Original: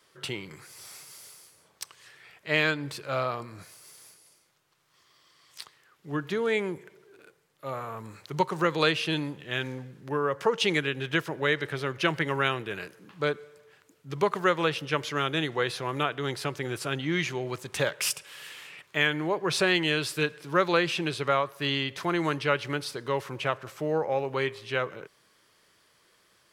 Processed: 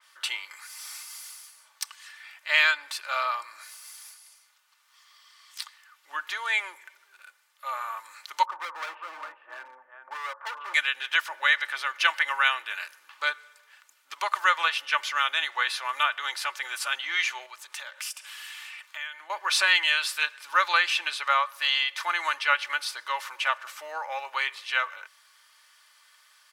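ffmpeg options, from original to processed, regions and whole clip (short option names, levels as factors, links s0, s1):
-filter_complex "[0:a]asettb=1/sr,asplit=3[s0][s1][s2];[s0]atrim=end=8.454[s3];[s1]atrim=start=8.45:end=10.74,asetpts=PTS-STARTPTS,afade=t=in:d=0.004:c=qsin,afade=t=out:st=2.286:d=0.004:c=qsin,lowpass=f=1200:w=0.5412,lowpass=f=1200:w=1.3066,aecho=1:1:404:0.335,atrim=end_sample=100989,volume=28.2,asoftclip=hard,volume=0.0355[s4];[s2]atrim=start=10.736[s5];[s3][s4]acrossfade=d=0.004:c1=hsin:c2=qsin[s6];[s6][s5]acrossfade=d=0.004:c1=qsin:c2=hsin,asettb=1/sr,asplit=3[s7][s8][s9];[s7]atrim=end=17.464[s10];[s8]atrim=start=17.46:end=19.3,asetpts=PTS-STARTPTS,afade=t=in:d=0.004:c=qsin,afade=t=out:st=1.836:d=0.004:c=qsin,bandreject=f=60:t=h:w=6,bandreject=f=120:t=h:w=6,bandreject=f=180:t=h:w=6,bandreject=f=240:t=h:w=6,bandreject=f=300:t=h:w=6,bandreject=f=360:t=h:w=6,bandreject=f=420:t=h:w=6,bandreject=f=480:t=h:w=6,bandreject=f=540:t=h:w=6,acompressor=threshold=0.00631:ratio=2.5:attack=3.2:release=140:knee=1:detection=peak[s11];[s9]atrim=start=19.296[s12];[s10][s11]acrossfade=d=0.004:c1=hsin:c2=qsin[s13];[s13][s12]acrossfade=d=0.004:c1=qsin:c2=hsin,highpass=f=940:w=0.5412,highpass=f=940:w=1.3066,aecho=1:1:3.4:0.49,adynamicequalizer=threshold=0.0126:dfrequency=3500:dqfactor=0.7:tfrequency=3500:tqfactor=0.7:attack=5:release=100:ratio=0.375:range=2:mode=cutabove:tftype=highshelf,volume=1.78"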